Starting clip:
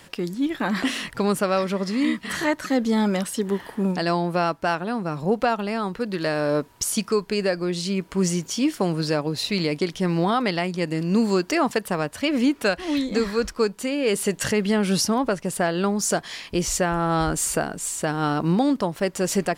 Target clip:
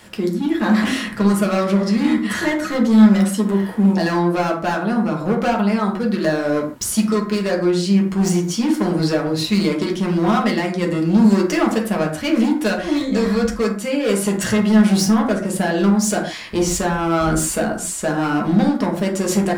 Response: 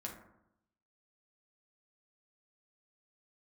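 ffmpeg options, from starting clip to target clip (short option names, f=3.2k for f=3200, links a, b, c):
-filter_complex "[0:a]volume=20dB,asoftclip=hard,volume=-20dB[a];[1:a]atrim=start_sample=2205,afade=t=out:st=0.2:d=0.01,atrim=end_sample=9261[b];[a][b]afir=irnorm=-1:irlink=0,volume=7dB"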